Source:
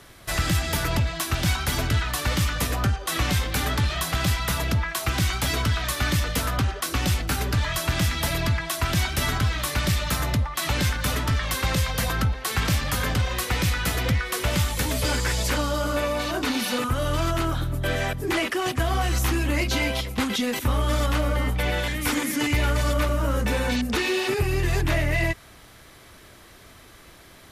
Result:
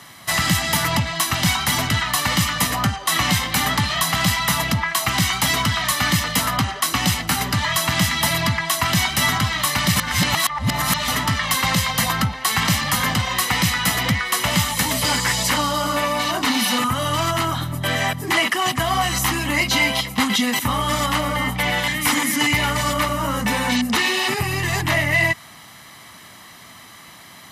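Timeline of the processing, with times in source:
9.96–11.08 s: reverse
whole clip: Chebyshev high-pass 200 Hz, order 2; peaking EQ 360 Hz -8.5 dB 0.96 oct; comb 1 ms, depth 46%; trim +8 dB

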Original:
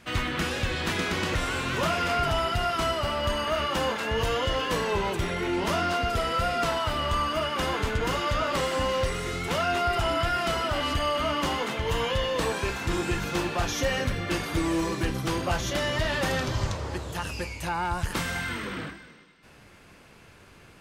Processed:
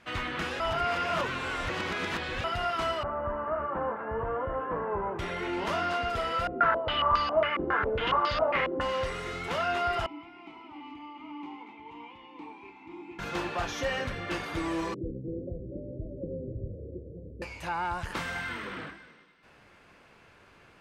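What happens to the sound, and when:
0.60–2.44 s: reverse
3.03–5.19 s: low-pass 1.4 kHz 24 dB/octave
6.47–8.81 s: step-sequenced low-pass 7.3 Hz 360–4600 Hz
10.06–13.19 s: vowel filter u
14.94–17.42 s: steep low-pass 530 Hz 72 dB/octave
whole clip: low-pass 2.1 kHz 6 dB/octave; bass shelf 390 Hz -9.5 dB

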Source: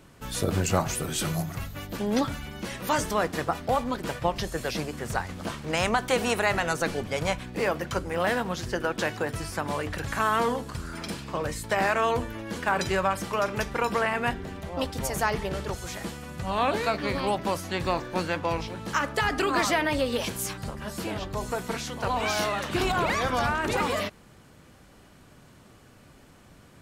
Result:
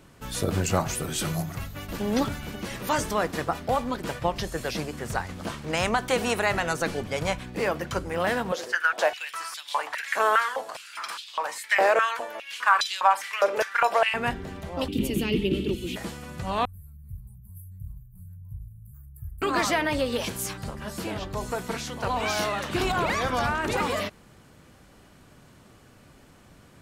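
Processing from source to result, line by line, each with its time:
1.61–2.01 s: echo throw 270 ms, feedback 70%, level -2.5 dB
8.52–14.14 s: step-sequenced high-pass 4.9 Hz 500–3500 Hz
14.88–15.96 s: FFT filter 130 Hz 0 dB, 210 Hz +11 dB, 340 Hz +14 dB, 710 Hz -18 dB, 1.7 kHz -14 dB, 2.8 kHz +11 dB, 5.7 kHz -10 dB, 14 kHz 0 dB
16.65–19.42 s: inverse Chebyshev band-stop 280–6100 Hz, stop band 50 dB

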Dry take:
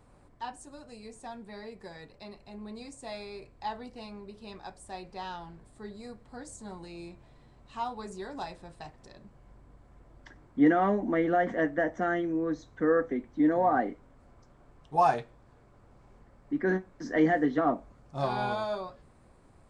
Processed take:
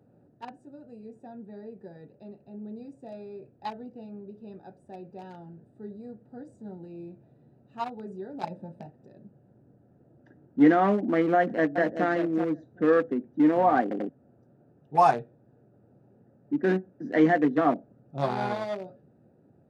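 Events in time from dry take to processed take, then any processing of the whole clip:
8.43–8.86 s: small resonant body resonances 210/570/880 Hz, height 12 dB, ringing for 55 ms
11.37–12.06 s: echo throw 380 ms, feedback 10%, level -7 dB
13.82 s: stutter in place 0.09 s, 3 plays
whole clip: local Wiener filter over 41 samples; high-pass 120 Hz 24 dB/octave; trim +4 dB

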